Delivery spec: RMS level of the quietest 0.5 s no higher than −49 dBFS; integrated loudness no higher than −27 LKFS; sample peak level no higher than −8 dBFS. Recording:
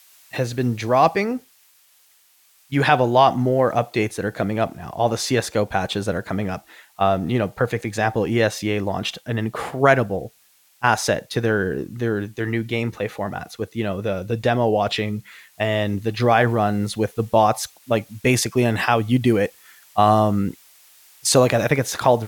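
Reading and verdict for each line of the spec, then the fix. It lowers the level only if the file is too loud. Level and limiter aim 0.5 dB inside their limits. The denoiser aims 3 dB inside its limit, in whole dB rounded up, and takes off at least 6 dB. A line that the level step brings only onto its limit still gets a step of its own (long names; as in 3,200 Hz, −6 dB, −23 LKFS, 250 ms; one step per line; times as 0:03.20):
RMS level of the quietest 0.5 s −57 dBFS: in spec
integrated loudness −21.0 LKFS: out of spec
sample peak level −2.0 dBFS: out of spec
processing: level −6.5 dB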